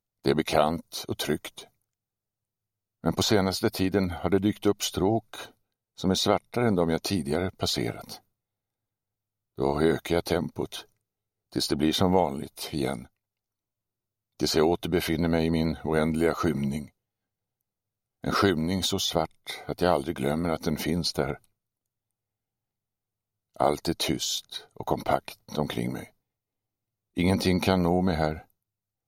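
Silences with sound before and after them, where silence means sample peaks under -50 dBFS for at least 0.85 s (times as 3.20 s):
1.67–3.04 s
8.19–9.57 s
13.07–14.40 s
16.89–18.24 s
21.44–23.55 s
26.09–27.17 s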